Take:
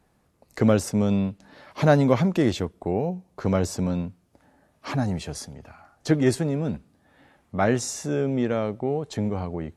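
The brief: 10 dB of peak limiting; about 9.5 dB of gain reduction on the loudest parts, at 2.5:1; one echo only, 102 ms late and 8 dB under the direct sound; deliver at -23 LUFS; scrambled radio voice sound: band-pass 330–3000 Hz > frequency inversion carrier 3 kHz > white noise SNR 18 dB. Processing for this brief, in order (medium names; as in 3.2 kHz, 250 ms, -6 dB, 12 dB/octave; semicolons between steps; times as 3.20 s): compression 2.5:1, threshold -28 dBFS; peak limiter -24.5 dBFS; band-pass 330–3000 Hz; delay 102 ms -8 dB; frequency inversion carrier 3 kHz; white noise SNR 18 dB; trim +13.5 dB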